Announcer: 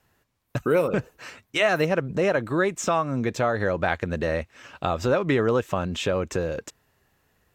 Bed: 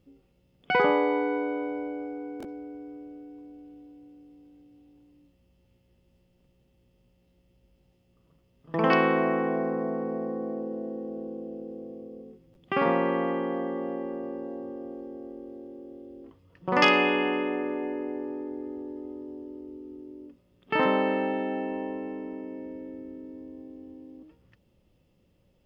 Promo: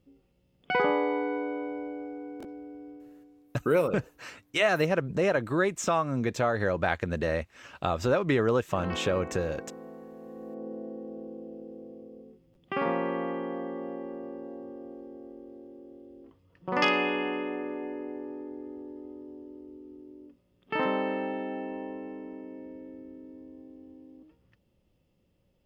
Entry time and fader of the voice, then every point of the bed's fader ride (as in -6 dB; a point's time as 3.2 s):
3.00 s, -3.0 dB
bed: 2.9 s -3 dB
3.52 s -15 dB
10.17 s -15 dB
10.67 s -4.5 dB